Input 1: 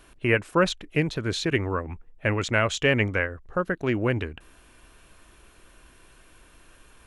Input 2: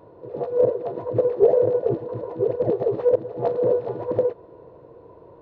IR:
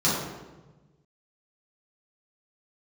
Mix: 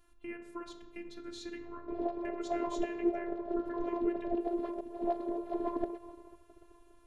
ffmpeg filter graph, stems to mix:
-filter_complex "[0:a]acompressor=threshold=0.0562:ratio=6,volume=0.188,asplit=2[s0][s1];[s1]volume=0.112[s2];[1:a]agate=range=0.126:threshold=0.00708:ratio=16:detection=peak,acompressor=threshold=0.0447:ratio=10,adelay=1650,volume=1.33[s3];[2:a]atrim=start_sample=2205[s4];[s2][s4]afir=irnorm=-1:irlink=0[s5];[s0][s3][s5]amix=inputs=3:normalize=0,lowshelf=f=110:g=8,afftfilt=real='hypot(re,im)*cos(PI*b)':imag='0':win_size=512:overlap=0.75"

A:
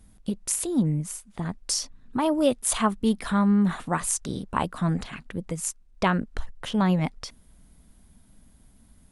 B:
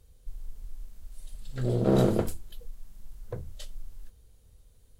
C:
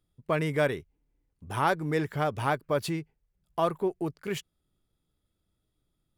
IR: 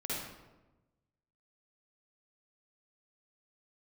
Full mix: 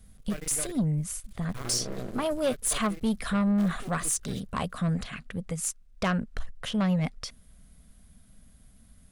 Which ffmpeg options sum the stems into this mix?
-filter_complex "[0:a]equalizer=f=330:t=o:w=0.47:g=-11,volume=1.06[s0];[1:a]volume=0.841[s1];[2:a]acrusher=bits=3:mode=log:mix=0:aa=0.000001,volume=0.376[s2];[s1][s2]amix=inputs=2:normalize=0,aeval=exprs='max(val(0),0)':c=same,alimiter=limit=0.0794:level=0:latency=1:release=269,volume=1[s3];[s0][s3]amix=inputs=2:normalize=0,equalizer=f=900:w=5.8:g=-11.5,asoftclip=type=tanh:threshold=0.1"

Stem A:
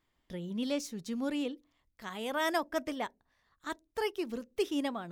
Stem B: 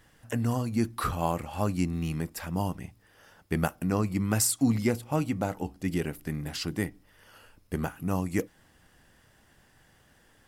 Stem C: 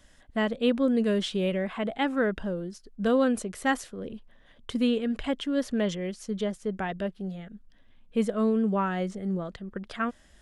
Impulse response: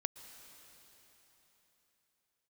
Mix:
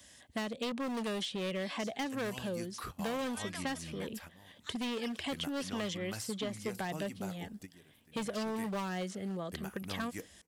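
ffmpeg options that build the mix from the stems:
-filter_complex "[0:a]bandpass=f=3800:t=q:w=0.65:csg=0,adelay=1000,volume=0.376[s0];[1:a]agate=range=0.0224:threshold=0.002:ratio=3:detection=peak,adelay=1800,volume=0.2,asplit=2[s1][s2];[s2]volume=0.0841[s3];[2:a]highpass=f=70:w=0.5412,highpass=f=70:w=1.3066,bandreject=f=1400:w=5.5,volume=16.8,asoftclip=hard,volume=0.0596,volume=0.841,asplit=2[s4][s5];[s5]apad=whole_len=541450[s6];[s1][s6]sidechaingate=range=0.0501:threshold=0.002:ratio=16:detection=peak[s7];[3:a]atrim=start_sample=2205[s8];[s3][s8]afir=irnorm=-1:irlink=0[s9];[s0][s7][s4][s9]amix=inputs=4:normalize=0,highshelf=f=2800:g=11,acrossover=split=590|4200[s10][s11][s12];[s10]acompressor=threshold=0.0126:ratio=4[s13];[s11]acompressor=threshold=0.0112:ratio=4[s14];[s12]acompressor=threshold=0.00316:ratio=4[s15];[s13][s14][s15]amix=inputs=3:normalize=0"

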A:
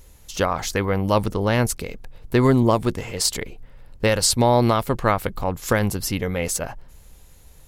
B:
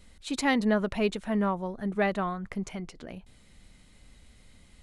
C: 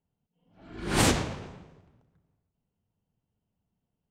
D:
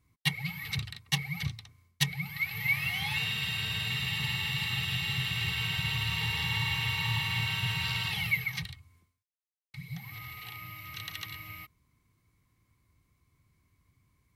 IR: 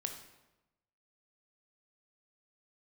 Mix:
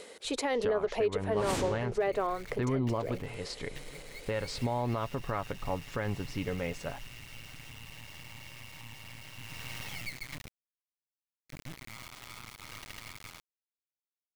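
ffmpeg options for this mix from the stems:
-filter_complex "[0:a]lowpass=2900,aecho=1:1:7.1:0.31,adelay=250,volume=0.335[s0];[1:a]acompressor=mode=upward:threshold=0.02:ratio=2.5,highpass=f=450:t=q:w=4.9,volume=1[s1];[2:a]adelay=500,volume=0.266[s2];[3:a]lowpass=f=3100:w=0.5412,lowpass=f=3100:w=1.3066,acompressor=threshold=0.02:ratio=3,acrusher=bits=4:dc=4:mix=0:aa=0.000001,adelay=1750,volume=0.891,afade=t=in:st=9.33:d=0.42:silence=0.421697[s3];[s0][s1][s3]amix=inputs=3:normalize=0,agate=range=0.0224:threshold=0.00141:ratio=3:detection=peak,alimiter=limit=0.0891:level=0:latency=1:release=144,volume=1[s4];[s2][s4]amix=inputs=2:normalize=0"

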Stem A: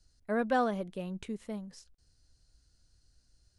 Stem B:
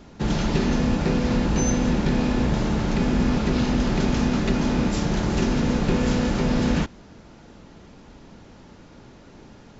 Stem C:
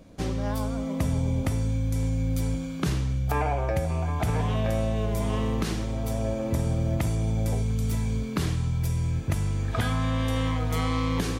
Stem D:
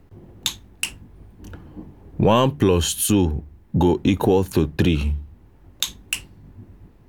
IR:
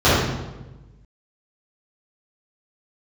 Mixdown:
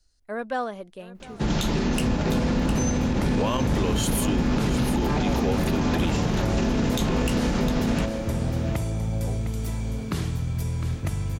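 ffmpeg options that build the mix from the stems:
-filter_complex "[0:a]equalizer=f=130:t=o:w=2:g=-9,volume=1.19,asplit=2[s0][s1];[s1]volume=0.112[s2];[1:a]adelay=1200,volume=1,asplit=2[s3][s4];[s4]volume=0.266[s5];[2:a]adelay=1750,volume=0.841,asplit=2[s6][s7];[s7]volume=0.335[s8];[3:a]lowshelf=f=340:g=-10,adelay=1150,volume=0.75,asplit=2[s9][s10];[s10]volume=0.224[s11];[s2][s5][s8][s11]amix=inputs=4:normalize=0,aecho=0:1:708:1[s12];[s0][s3][s6][s9][s12]amix=inputs=5:normalize=0,alimiter=limit=0.188:level=0:latency=1:release=48"

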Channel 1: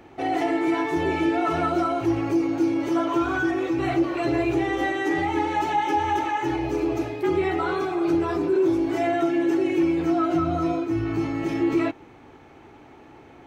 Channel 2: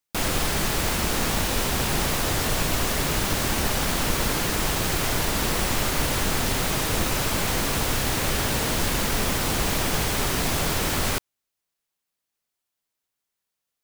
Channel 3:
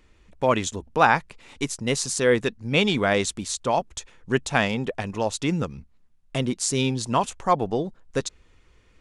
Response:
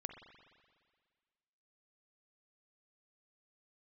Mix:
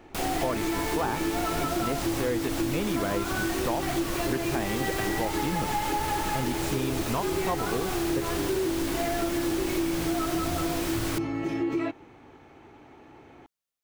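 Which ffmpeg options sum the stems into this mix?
-filter_complex "[0:a]volume=0.708[s0];[1:a]volume=0.473[s1];[2:a]deesser=0.95,volume=0.794[s2];[s0][s1][s2]amix=inputs=3:normalize=0,acompressor=threshold=0.0631:ratio=6"

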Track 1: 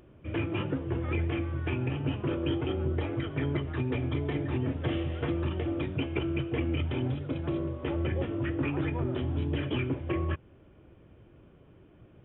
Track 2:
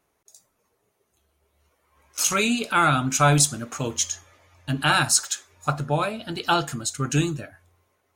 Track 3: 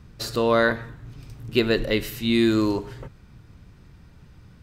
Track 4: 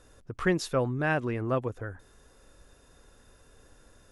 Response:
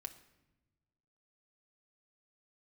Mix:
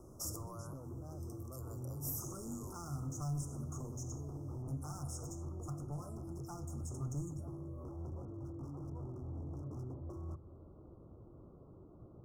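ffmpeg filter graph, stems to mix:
-filter_complex "[0:a]lowpass=2500,volume=0.841,asplit=2[s0][s1];[s1]volume=0.211[s2];[1:a]acrossover=split=2500[s3][s4];[s4]acompressor=threshold=0.0158:ratio=4:attack=1:release=60[s5];[s3][s5]amix=inputs=2:normalize=0,volume=0.447,asplit=2[s6][s7];[s7]volume=0.631[s8];[2:a]highshelf=f=4500:g=9,acompressor=threshold=0.0398:ratio=2,highpass=f=680:w=0.5412,highpass=f=680:w=1.3066,volume=0.422[s9];[3:a]volume=0.376,asplit=2[s10][s11];[s11]apad=whole_len=540013[s12];[s0][s12]sidechaincompress=threshold=0.00708:ratio=8:attack=16:release=164[s13];[s13][s6][s10]amix=inputs=3:normalize=0,aeval=exprs='0.0355*(abs(mod(val(0)/0.0355+3,4)-2)-1)':c=same,alimiter=level_in=6.31:limit=0.0631:level=0:latency=1:release=16,volume=0.158,volume=1[s14];[4:a]atrim=start_sample=2205[s15];[s2][s8]amix=inputs=2:normalize=0[s16];[s16][s15]afir=irnorm=-1:irlink=0[s17];[s9][s14][s17]amix=inputs=3:normalize=0,asuperstop=centerf=2700:order=20:qfactor=0.66,acrossover=split=190|3000[s18][s19][s20];[s19]acompressor=threshold=0.00316:ratio=6[s21];[s18][s21][s20]amix=inputs=3:normalize=0"

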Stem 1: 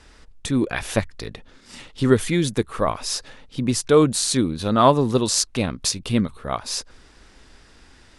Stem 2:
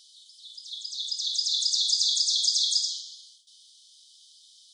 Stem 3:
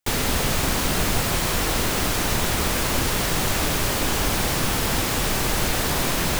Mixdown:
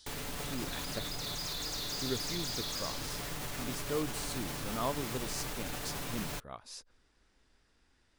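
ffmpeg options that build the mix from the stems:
-filter_complex "[0:a]volume=0.1[s0];[1:a]asoftclip=type=tanh:threshold=0.0398,volume=0.631[s1];[2:a]aecho=1:1:6.9:0.45,volume=0.178[s2];[s1][s2]amix=inputs=2:normalize=0,alimiter=level_in=1.88:limit=0.0631:level=0:latency=1:release=56,volume=0.531,volume=1[s3];[s0][s3]amix=inputs=2:normalize=0"

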